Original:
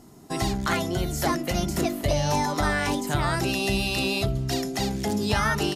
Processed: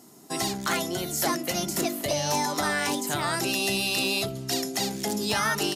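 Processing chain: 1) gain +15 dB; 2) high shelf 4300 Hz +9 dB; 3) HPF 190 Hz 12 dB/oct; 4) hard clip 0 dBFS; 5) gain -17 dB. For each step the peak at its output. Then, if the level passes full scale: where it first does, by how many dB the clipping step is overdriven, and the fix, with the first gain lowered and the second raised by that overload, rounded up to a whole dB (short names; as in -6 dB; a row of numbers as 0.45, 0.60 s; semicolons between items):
+4.5, +6.0, +6.5, 0.0, -17.0 dBFS; step 1, 6.5 dB; step 1 +8 dB, step 5 -10 dB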